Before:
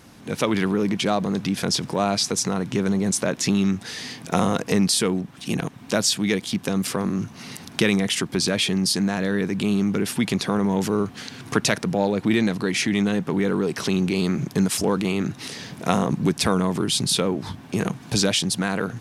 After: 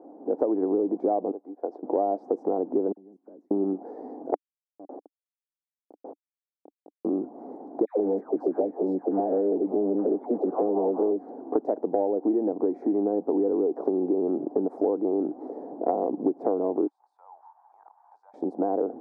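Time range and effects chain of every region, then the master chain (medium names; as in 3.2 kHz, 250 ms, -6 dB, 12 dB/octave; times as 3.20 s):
1.31–1.83 s: Bessel high-pass 490 Hz + distance through air 96 m + upward expansion 2.5:1, over -40 dBFS
2.92–3.51 s: amplifier tone stack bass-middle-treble 6-0-2 + compression 4:1, threshold -42 dBFS + phase dispersion lows, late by 52 ms, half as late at 1.6 kHz
4.34–7.05 s: amplifier tone stack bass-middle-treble 6-0-2 + Schmitt trigger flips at -31 dBFS
7.85–11.40 s: phase dispersion lows, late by 133 ms, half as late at 930 Hz + loudspeaker Doppler distortion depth 0.29 ms
16.87–18.34 s: Chebyshev high-pass 870 Hz, order 5 + compression 2.5:1, threshold -44 dBFS
whole clip: elliptic band-pass 290–780 Hz, stop band 60 dB; compression, threshold -29 dBFS; trim +8 dB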